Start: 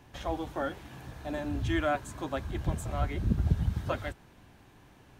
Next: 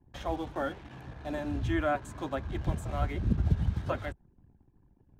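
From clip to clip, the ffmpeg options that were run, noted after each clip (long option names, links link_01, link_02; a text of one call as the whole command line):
ffmpeg -i in.wav -filter_complex "[0:a]anlmdn=0.00398,acrossover=split=140|2200[link_01][link_02][link_03];[link_03]alimiter=level_in=17dB:limit=-24dB:level=0:latency=1:release=93,volume=-17dB[link_04];[link_01][link_02][link_04]amix=inputs=3:normalize=0" out.wav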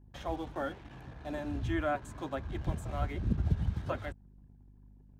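ffmpeg -i in.wav -af "aeval=exprs='val(0)+0.00224*(sin(2*PI*50*n/s)+sin(2*PI*2*50*n/s)/2+sin(2*PI*3*50*n/s)/3+sin(2*PI*4*50*n/s)/4+sin(2*PI*5*50*n/s)/5)':channel_layout=same,volume=-3dB" out.wav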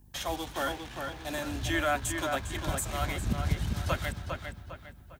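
ffmpeg -i in.wav -filter_complex "[0:a]acrossover=split=320[link_01][link_02];[link_02]crystalizer=i=9.5:c=0[link_03];[link_01][link_03]amix=inputs=2:normalize=0,asplit=2[link_04][link_05];[link_05]adelay=403,lowpass=frequency=4000:poles=1,volume=-5dB,asplit=2[link_06][link_07];[link_07]adelay=403,lowpass=frequency=4000:poles=1,volume=0.4,asplit=2[link_08][link_09];[link_09]adelay=403,lowpass=frequency=4000:poles=1,volume=0.4,asplit=2[link_10][link_11];[link_11]adelay=403,lowpass=frequency=4000:poles=1,volume=0.4,asplit=2[link_12][link_13];[link_13]adelay=403,lowpass=frequency=4000:poles=1,volume=0.4[link_14];[link_04][link_06][link_08][link_10][link_12][link_14]amix=inputs=6:normalize=0" out.wav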